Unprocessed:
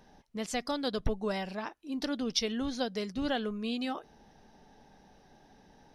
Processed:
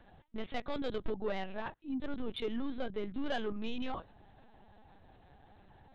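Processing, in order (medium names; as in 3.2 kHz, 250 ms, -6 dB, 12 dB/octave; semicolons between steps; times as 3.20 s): LPC vocoder at 8 kHz pitch kept; saturation -26 dBFS, distortion -15 dB; 1.89–3.26 s: treble shelf 2.6 kHz -8.5 dB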